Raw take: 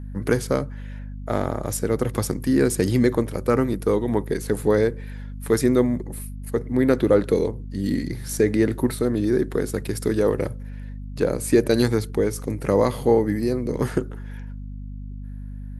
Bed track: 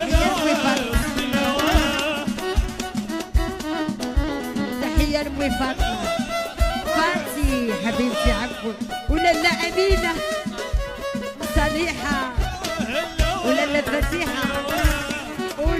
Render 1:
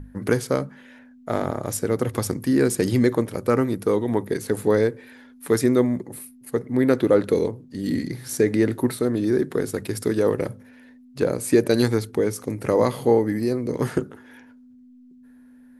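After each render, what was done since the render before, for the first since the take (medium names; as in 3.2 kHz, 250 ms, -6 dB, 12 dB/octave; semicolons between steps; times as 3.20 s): hum notches 50/100/150/200 Hz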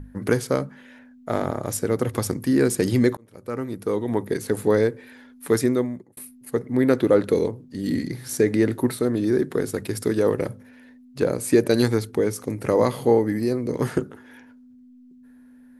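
3.17–4.29 s: fade in; 5.57–6.17 s: fade out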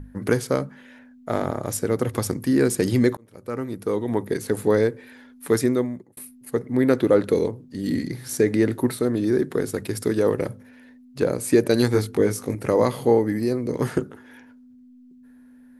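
11.92–12.55 s: doubling 20 ms -2.5 dB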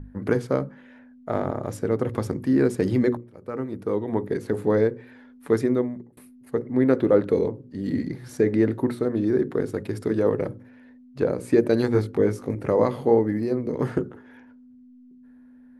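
low-pass 1.4 kHz 6 dB/octave; hum notches 60/120/180/240/300/360/420/480/540 Hz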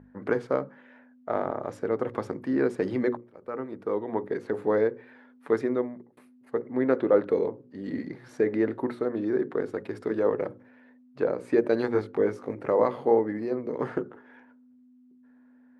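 band-pass filter 1 kHz, Q 0.53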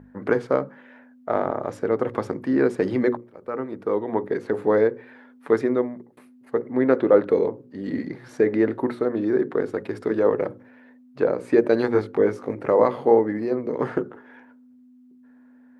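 trim +5 dB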